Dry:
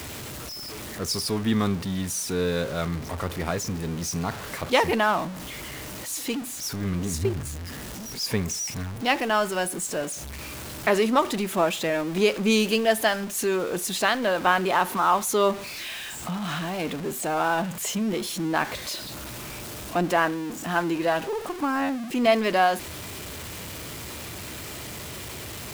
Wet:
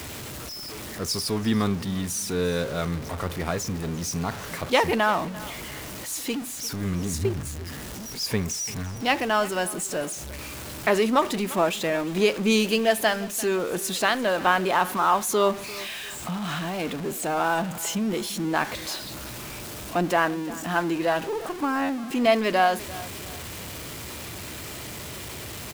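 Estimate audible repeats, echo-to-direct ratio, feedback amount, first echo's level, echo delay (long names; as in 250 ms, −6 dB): 2, −18.0 dB, 33%, −18.5 dB, 346 ms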